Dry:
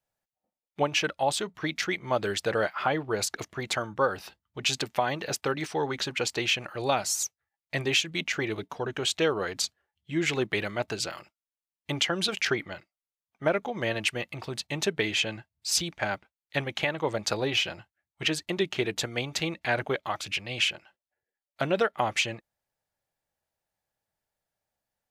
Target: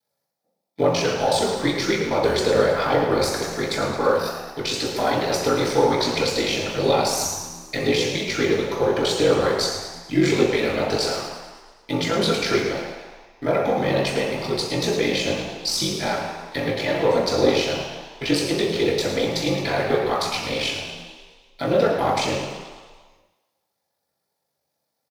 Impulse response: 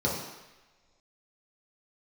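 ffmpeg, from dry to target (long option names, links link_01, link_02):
-filter_complex "[0:a]highpass=frequency=350:poles=1,highshelf=frequency=4700:gain=10,alimiter=limit=-20dB:level=0:latency=1:release=33,asplit=2[link_01][link_02];[link_02]acrusher=bits=4:dc=4:mix=0:aa=0.000001,volume=-7dB[link_03];[link_01][link_03]amix=inputs=2:normalize=0,flanger=delay=4.5:depth=9.9:regen=-48:speed=0.99:shape=sinusoidal,aeval=exprs='val(0)*sin(2*PI*24*n/s)':channel_layout=same,flanger=delay=4.7:depth=9.3:regen=-70:speed=0.14:shape=triangular,asplit=8[link_04][link_05][link_06][link_07][link_08][link_09][link_10][link_11];[link_05]adelay=109,afreqshift=74,volume=-11dB[link_12];[link_06]adelay=218,afreqshift=148,volume=-15.6dB[link_13];[link_07]adelay=327,afreqshift=222,volume=-20.2dB[link_14];[link_08]adelay=436,afreqshift=296,volume=-24.7dB[link_15];[link_09]adelay=545,afreqshift=370,volume=-29.3dB[link_16];[link_10]adelay=654,afreqshift=444,volume=-33.9dB[link_17];[link_11]adelay=763,afreqshift=518,volume=-38.5dB[link_18];[link_04][link_12][link_13][link_14][link_15][link_16][link_17][link_18]amix=inputs=8:normalize=0[link_19];[1:a]atrim=start_sample=2205,asetrate=42777,aresample=44100[link_20];[link_19][link_20]afir=irnorm=-1:irlink=0,volume=7.5dB"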